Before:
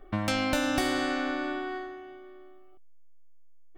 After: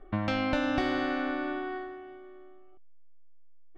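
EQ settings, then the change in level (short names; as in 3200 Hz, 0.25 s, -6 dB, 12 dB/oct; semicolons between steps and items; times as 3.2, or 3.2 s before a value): air absorption 230 m; 0.0 dB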